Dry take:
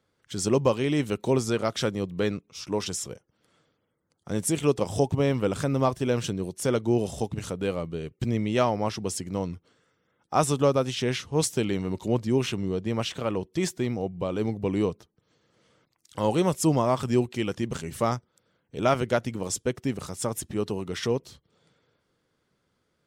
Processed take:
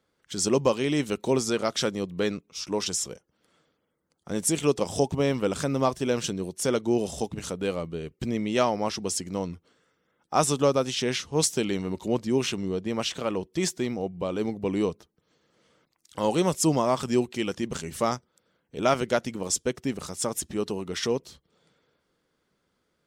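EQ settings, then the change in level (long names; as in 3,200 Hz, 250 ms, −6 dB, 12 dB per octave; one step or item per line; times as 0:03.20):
parametric band 110 Hz −9.5 dB 0.5 octaves
dynamic equaliser 5,900 Hz, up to +5 dB, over −47 dBFS, Q 0.83
0.0 dB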